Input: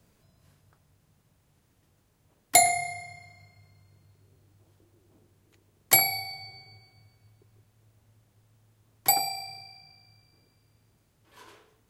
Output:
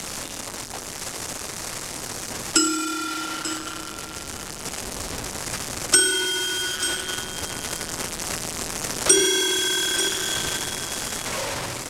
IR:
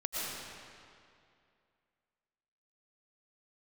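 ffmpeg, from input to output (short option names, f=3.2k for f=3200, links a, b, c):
-filter_complex "[0:a]aeval=exprs='val(0)+0.5*0.112*sgn(val(0))':c=same,acrossover=split=5400[a][b];[a]adynamicsmooth=sensitivity=5:basefreq=2.3k[c];[c][b]amix=inputs=2:normalize=0,asetrate=33038,aresample=44100,atempo=1.33484,dynaudnorm=f=360:g=9:m=11.5dB,highpass=370,lowpass=6.9k,asplit=2[d][e];[e]aecho=0:1:890:0.251[f];[d][f]amix=inputs=2:normalize=0,afreqshift=-210,highshelf=f=5.2k:g=11.5,volume=-4dB"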